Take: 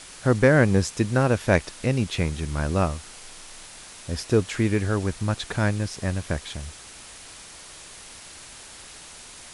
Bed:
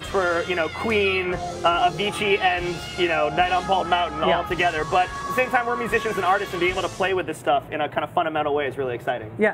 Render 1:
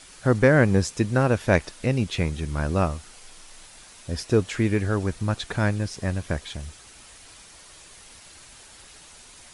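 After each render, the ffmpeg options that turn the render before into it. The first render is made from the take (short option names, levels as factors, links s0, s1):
-af "afftdn=nr=6:nf=-44"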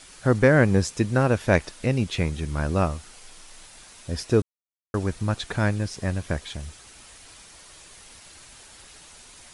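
-filter_complex "[0:a]asplit=3[s0][s1][s2];[s0]atrim=end=4.42,asetpts=PTS-STARTPTS,afade=t=out:st=4.416:d=0.004:c=hsin[s3];[s1]atrim=start=4.42:end=4.94,asetpts=PTS-STARTPTS,volume=0[s4];[s2]atrim=start=4.94,asetpts=PTS-STARTPTS,afade=t=in:d=0.004:c=hsin[s5];[s3][s4][s5]concat=n=3:v=0:a=1"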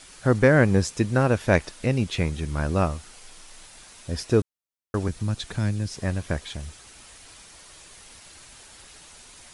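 -filter_complex "[0:a]asettb=1/sr,asplit=3[s0][s1][s2];[s0]atrim=end=5.084[s3];[s1]atrim=start=5.08:end=5.98,asetpts=PTS-STARTPTS,afade=t=in:d=0.004:c=qsin,afade=t=out:st=0.896:d=0.004:c=qsin,acrossover=split=280|3000[s4][s5][s6];[s5]acompressor=threshold=0.00708:ratio=2:attack=3.2:release=140:knee=2.83:detection=peak[s7];[s4][s7][s6]amix=inputs=3:normalize=0[s8];[s2]atrim=start=5.976[s9];[s3][s8]acrossfade=d=0.004:c1=hsin:c2=qsin[s10];[s10][s9]acrossfade=d=0.004:c1=qsin:c2=hsin"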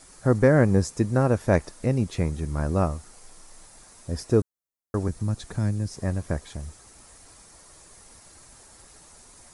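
-af "equalizer=f=3000:t=o:w=1.3:g=-12.5,bandreject=f=1500:w=22"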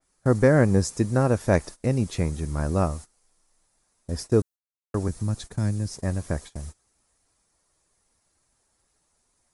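-af "agate=range=0.1:threshold=0.0141:ratio=16:detection=peak,adynamicequalizer=threshold=0.00501:dfrequency=3500:dqfactor=0.7:tfrequency=3500:tqfactor=0.7:attack=5:release=100:ratio=0.375:range=2:mode=boostabove:tftype=highshelf"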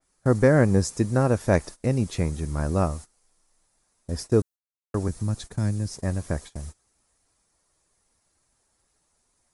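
-af anull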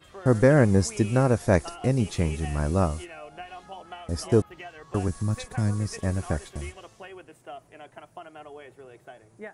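-filter_complex "[1:a]volume=0.0891[s0];[0:a][s0]amix=inputs=2:normalize=0"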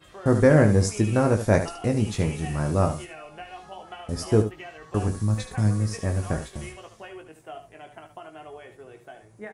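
-filter_complex "[0:a]asplit=2[s0][s1];[s1]adelay=19,volume=0.447[s2];[s0][s2]amix=inputs=2:normalize=0,asplit=2[s3][s4];[s4]aecho=0:1:74:0.316[s5];[s3][s5]amix=inputs=2:normalize=0"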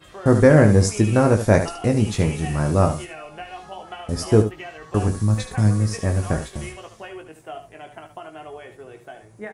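-af "volume=1.68,alimiter=limit=0.891:level=0:latency=1"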